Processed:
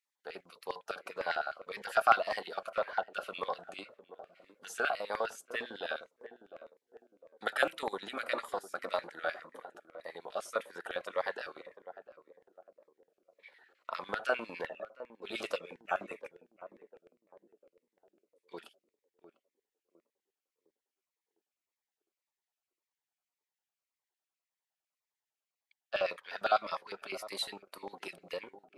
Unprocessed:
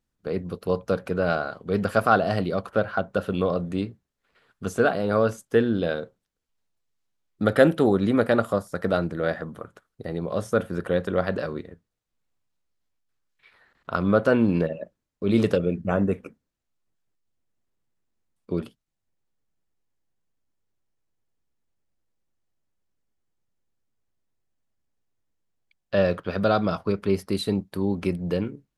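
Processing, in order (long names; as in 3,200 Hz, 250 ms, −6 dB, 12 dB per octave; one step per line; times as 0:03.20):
feedback echo with a band-pass in the loop 698 ms, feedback 45%, band-pass 340 Hz, level −11 dB
auto-filter high-pass square 9.9 Hz 830–2,100 Hz
phaser whose notches keep moving one way falling 1.8 Hz
level −5 dB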